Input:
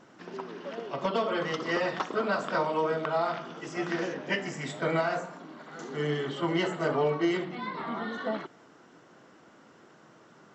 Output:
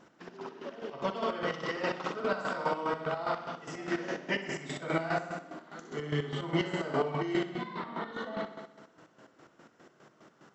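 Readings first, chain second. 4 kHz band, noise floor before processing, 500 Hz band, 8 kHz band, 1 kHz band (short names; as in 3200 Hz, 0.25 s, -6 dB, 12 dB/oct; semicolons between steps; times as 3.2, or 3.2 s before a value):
-3.0 dB, -57 dBFS, -4.5 dB, n/a, -3.0 dB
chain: flutter echo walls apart 10.5 m, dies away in 1.1 s; chopper 4.9 Hz, depth 65%, duty 40%; gain -2.5 dB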